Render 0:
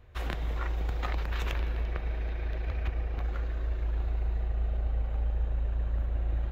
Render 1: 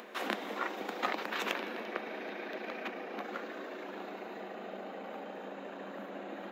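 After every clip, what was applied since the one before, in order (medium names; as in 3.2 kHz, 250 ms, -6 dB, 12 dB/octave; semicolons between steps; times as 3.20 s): Chebyshev high-pass 200 Hz, order 6; upward compressor, threshold -44 dBFS; trim +4.5 dB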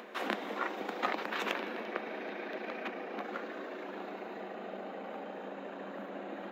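treble shelf 4.4 kHz -6.5 dB; trim +1 dB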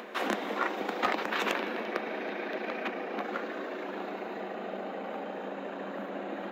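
overload inside the chain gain 22.5 dB; trim +5 dB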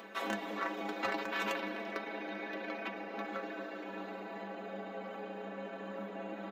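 inharmonic resonator 99 Hz, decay 0.24 s, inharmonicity 0.008; speakerphone echo 390 ms, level -17 dB; trim +3 dB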